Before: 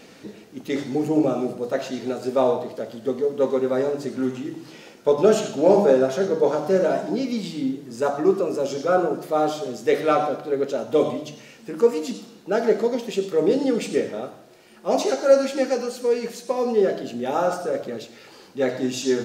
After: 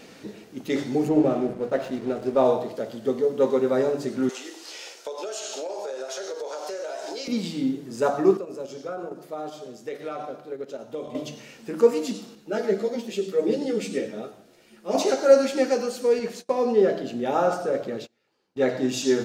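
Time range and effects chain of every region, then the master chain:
1.09–2.45 high shelf 3900 Hz -8.5 dB + backlash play -36.5 dBFS
4.29–7.28 HPF 430 Hz 24 dB/oct + bell 6100 Hz +11.5 dB 2.1 oct + compressor 12:1, threshold -29 dBFS
8.37–11.15 gate -23 dBFS, range -10 dB + compressor 20:1, threshold -28 dBFS
12.35–14.95 bell 960 Hz -5 dB 1.1 oct + ensemble effect
16.19–18.89 gate -40 dBFS, range -26 dB + high shelf 6300 Hz -7 dB
whole clip: dry

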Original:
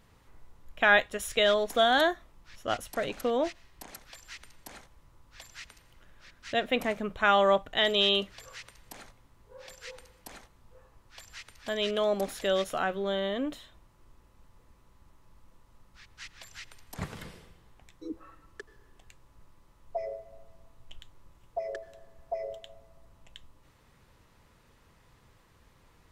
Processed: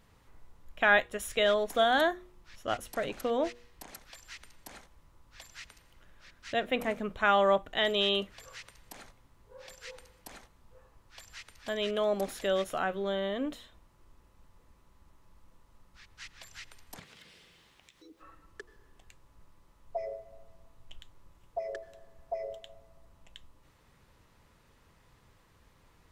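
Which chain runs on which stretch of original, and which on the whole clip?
16.98–18.21 weighting filter D + compressor 3:1, threshold -55 dBFS + added noise pink -74 dBFS
whole clip: de-hum 120.3 Hz, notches 4; dynamic EQ 4800 Hz, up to -5 dB, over -44 dBFS, Q 1.1; gain -1.5 dB

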